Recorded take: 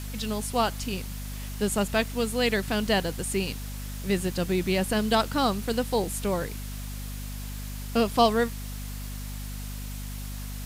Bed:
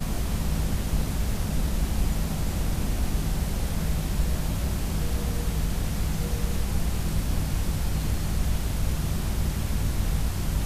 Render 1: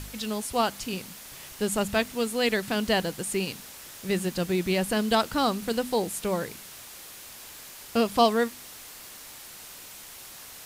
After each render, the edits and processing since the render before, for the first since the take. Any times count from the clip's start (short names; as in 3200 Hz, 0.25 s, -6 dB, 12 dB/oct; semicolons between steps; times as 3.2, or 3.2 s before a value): de-hum 50 Hz, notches 5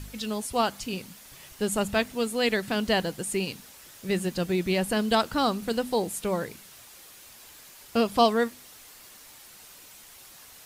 denoiser 6 dB, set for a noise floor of -45 dBFS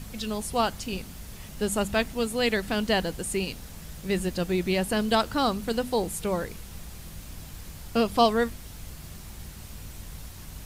add bed -16 dB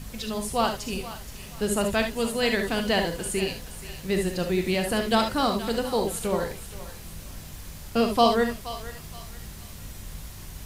thinning echo 0.474 s, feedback 41%, high-pass 850 Hz, level -12.5 dB; non-linear reverb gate 90 ms rising, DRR 4.5 dB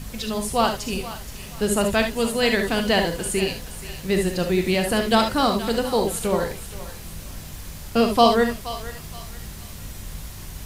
gain +4 dB